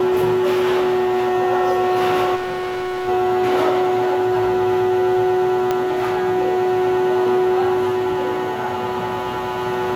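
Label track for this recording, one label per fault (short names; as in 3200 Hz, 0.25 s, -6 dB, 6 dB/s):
2.350000	3.090000	clipped -22 dBFS
5.710000	5.710000	pop -7 dBFS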